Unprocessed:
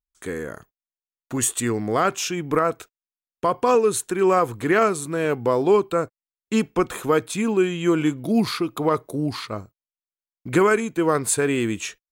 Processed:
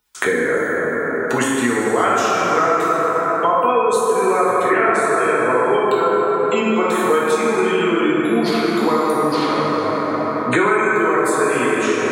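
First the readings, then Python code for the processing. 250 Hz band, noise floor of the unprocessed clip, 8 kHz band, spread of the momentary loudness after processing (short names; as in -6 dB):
+3.5 dB, under -85 dBFS, -1.5 dB, 3 LU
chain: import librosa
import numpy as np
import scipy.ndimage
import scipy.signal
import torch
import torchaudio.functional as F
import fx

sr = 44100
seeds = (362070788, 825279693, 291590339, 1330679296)

y = fx.spec_gate(x, sr, threshold_db=-30, keep='strong')
y = fx.highpass(y, sr, hz=730.0, slope=6)
y = fx.high_shelf(y, sr, hz=6200.0, db=-5.0)
y = fx.notch(y, sr, hz=1200.0, q=23.0)
y = fx.rev_plate(y, sr, seeds[0], rt60_s=3.8, hf_ratio=0.35, predelay_ms=0, drr_db=-8.5)
y = fx.band_squash(y, sr, depth_pct=100)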